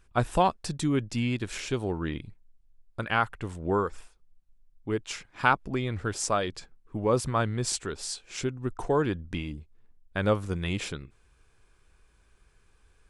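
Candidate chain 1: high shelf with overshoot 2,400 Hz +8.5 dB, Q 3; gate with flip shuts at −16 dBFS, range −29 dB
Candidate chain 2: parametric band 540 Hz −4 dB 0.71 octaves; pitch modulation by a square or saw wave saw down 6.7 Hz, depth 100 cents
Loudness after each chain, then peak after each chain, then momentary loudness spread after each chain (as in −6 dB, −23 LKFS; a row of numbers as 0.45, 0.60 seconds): −34.5, −30.5 LKFS; −12.5, −6.0 dBFS; 15, 12 LU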